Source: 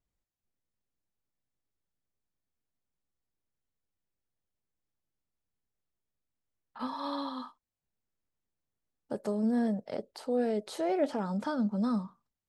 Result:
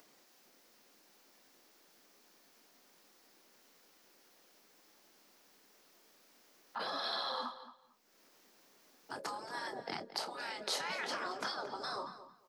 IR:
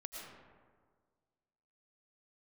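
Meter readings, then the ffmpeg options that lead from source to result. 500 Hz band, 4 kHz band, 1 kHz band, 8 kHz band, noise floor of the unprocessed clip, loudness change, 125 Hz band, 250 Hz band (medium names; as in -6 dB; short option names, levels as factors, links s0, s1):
-11.5 dB, +9.0 dB, -1.5 dB, no reading, under -85 dBFS, -7.0 dB, -20.0 dB, -21.5 dB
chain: -filter_complex "[0:a]afftfilt=real='re*lt(hypot(re,im),0.0355)':imag='im*lt(hypot(re,im),0.0355)':win_size=1024:overlap=0.75,acrossover=split=170 5600:gain=0.141 1 0.224[s0][s1][s2];[s0][s1][s2]amix=inputs=3:normalize=0,acrossover=split=210[s3][s4];[s4]acompressor=mode=upward:threshold=0.00112:ratio=2.5[s5];[s3][s5]amix=inputs=2:normalize=0,aexciter=amount=2:drive=5.3:freq=4700,asplit=2[s6][s7];[s7]adelay=29,volume=0.282[s8];[s6][s8]amix=inputs=2:normalize=0,asplit=2[s9][s10];[s10]adelay=224,lowpass=f=4900:p=1,volume=0.224,asplit=2[s11][s12];[s12]adelay=224,lowpass=f=4900:p=1,volume=0.18[s13];[s11][s13]amix=inputs=2:normalize=0[s14];[s9][s14]amix=inputs=2:normalize=0,volume=2.51"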